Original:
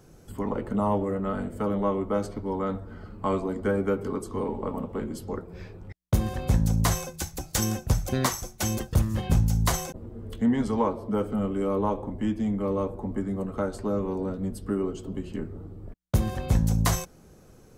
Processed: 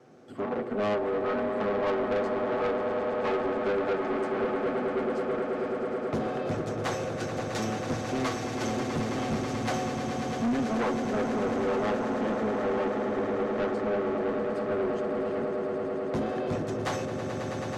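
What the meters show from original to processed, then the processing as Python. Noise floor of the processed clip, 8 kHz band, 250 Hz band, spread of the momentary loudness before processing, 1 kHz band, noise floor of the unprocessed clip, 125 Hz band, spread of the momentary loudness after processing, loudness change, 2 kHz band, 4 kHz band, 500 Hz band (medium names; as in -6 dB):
-34 dBFS, -10.5 dB, -2.0 dB, 12 LU, +1.5 dB, -53 dBFS, -10.0 dB, 4 LU, -1.5 dB, +4.0 dB, -2.5 dB, +3.0 dB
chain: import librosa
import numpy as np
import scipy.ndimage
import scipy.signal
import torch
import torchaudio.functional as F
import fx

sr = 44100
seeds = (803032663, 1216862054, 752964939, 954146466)

y = fx.lower_of_two(x, sr, delay_ms=8.0)
y = fx.bandpass_edges(y, sr, low_hz=260.0, high_hz=5100.0)
y = fx.high_shelf(y, sr, hz=2300.0, db=-10.0)
y = fx.notch(y, sr, hz=970.0, q=6.1)
y = fx.echo_swell(y, sr, ms=108, loudest=8, wet_db=-11.5)
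y = 10.0 ** (-29.0 / 20.0) * np.tanh(y / 10.0 ** (-29.0 / 20.0))
y = y * librosa.db_to_amplitude(5.5)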